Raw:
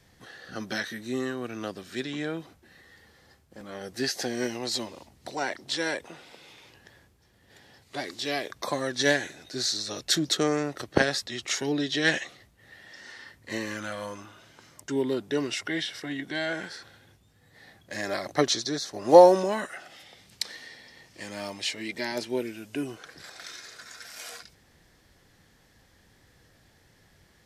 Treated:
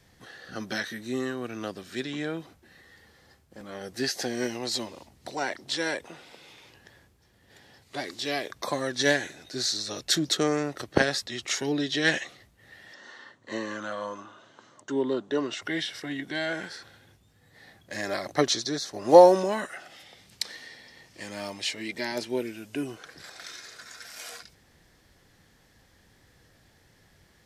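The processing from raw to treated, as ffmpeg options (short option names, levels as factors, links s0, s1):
-filter_complex "[0:a]asettb=1/sr,asplit=3[s0][s1][s2];[s0]atrim=end=12.944[s3];[s1]atrim=start=12.94:end=15.62,asetpts=PTS-STARTPTS,afade=t=in:d=0.004:c=qsin,afade=t=out:st=2.676:d=0.004:c=qsin,highpass=f=130:w=0.5412,highpass=f=130:w=1.3066,equalizer=f=160:t=q:w=4:g=-7,equalizer=f=580:t=q:w=4:g=3,equalizer=f=1100:t=q:w=4:g=6,equalizer=f=2300:t=q:w=4:g=-10,equalizer=f=5100:t=q:w=4:g=-10,lowpass=f=6800:w=0.5412,lowpass=f=6800:w=1.3066[s4];[s2]atrim=start=15.616[s5];[s3][s4]acrossfade=d=0.004:c1=hsin:c2=qsin[s6];[s6][s5]acrossfade=d=0.004:c1=qsin:c2=hsin"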